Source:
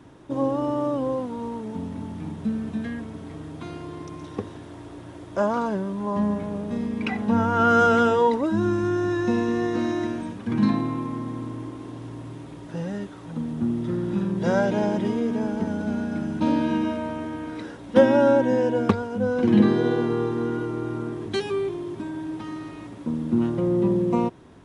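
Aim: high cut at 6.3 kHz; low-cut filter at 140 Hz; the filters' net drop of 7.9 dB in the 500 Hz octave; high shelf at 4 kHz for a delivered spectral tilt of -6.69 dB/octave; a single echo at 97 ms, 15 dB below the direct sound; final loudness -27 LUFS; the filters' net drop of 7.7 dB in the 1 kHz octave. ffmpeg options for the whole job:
-af "highpass=140,lowpass=6300,equalizer=f=500:t=o:g=-8,equalizer=f=1000:t=o:g=-8,highshelf=f=4000:g=-7.5,aecho=1:1:97:0.178,volume=1.19"

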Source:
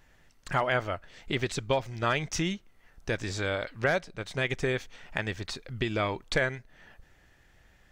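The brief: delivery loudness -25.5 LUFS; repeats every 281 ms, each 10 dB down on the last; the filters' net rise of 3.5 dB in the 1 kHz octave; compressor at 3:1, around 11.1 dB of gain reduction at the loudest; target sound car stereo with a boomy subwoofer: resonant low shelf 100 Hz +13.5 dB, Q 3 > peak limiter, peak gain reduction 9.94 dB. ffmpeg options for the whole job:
-af "equalizer=f=1000:t=o:g=5,acompressor=threshold=0.0178:ratio=3,lowshelf=f=100:t=q:w=3:g=13.5,aecho=1:1:281|562|843|1124:0.316|0.101|0.0324|0.0104,volume=5.01,alimiter=limit=0.266:level=0:latency=1"

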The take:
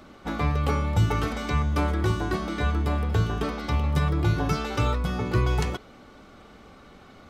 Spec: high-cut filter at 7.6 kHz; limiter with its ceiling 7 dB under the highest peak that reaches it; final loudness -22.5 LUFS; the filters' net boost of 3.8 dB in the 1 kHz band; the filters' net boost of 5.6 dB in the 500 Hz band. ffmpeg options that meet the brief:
-af "lowpass=7600,equalizer=f=500:t=o:g=6.5,equalizer=f=1000:t=o:g=3,volume=1.68,alimiter=limit=0.237:level=0:latency=1"

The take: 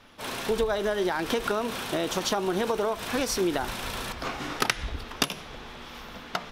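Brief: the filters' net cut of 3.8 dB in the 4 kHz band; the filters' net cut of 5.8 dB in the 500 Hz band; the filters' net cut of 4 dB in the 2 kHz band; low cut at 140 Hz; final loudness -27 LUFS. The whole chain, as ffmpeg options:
-af "highpass=140,equalizer=f=500:t=o:g=-7.5,equalizer=f=2000:t=o:g=-4,equalizer=f=4000:t=o:g=-3.5,volume=1.88"

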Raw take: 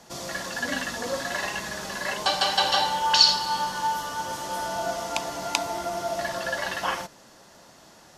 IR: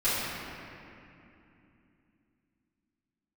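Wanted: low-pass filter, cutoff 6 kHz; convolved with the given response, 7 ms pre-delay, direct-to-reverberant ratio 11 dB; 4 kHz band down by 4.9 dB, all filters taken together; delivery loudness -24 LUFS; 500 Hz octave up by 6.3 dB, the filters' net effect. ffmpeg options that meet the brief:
-filter_complex "[0:a]lowpass=6000,equalizer=f=500:t=o:g=8.5,equalizer=f=4000:t=o:g=-5,asplit=2[s0][s1];[1:a]atrim=start_sample=2205,adelay=7[s2];[s1][s2]afir=irnorm=-1:irlink=0,volume=0.0631[s3];[s0][s3]amix=inputs=2:normalize=0,volume=1.12"

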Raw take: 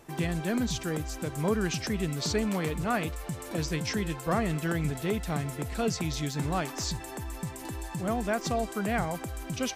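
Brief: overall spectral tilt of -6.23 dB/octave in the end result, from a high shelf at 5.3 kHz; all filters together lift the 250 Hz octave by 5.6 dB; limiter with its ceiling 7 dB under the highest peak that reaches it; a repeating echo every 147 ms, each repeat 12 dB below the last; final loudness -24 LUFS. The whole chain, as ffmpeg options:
-af "equalizer=f=250:t=o:g=7.5,highshelf=f=5300:g=-6.5,alimiter=limit=0.1:level=0:latency=1,aecho=1:1:147|294|441:0.251|0.0628|0.0157,volume=2"

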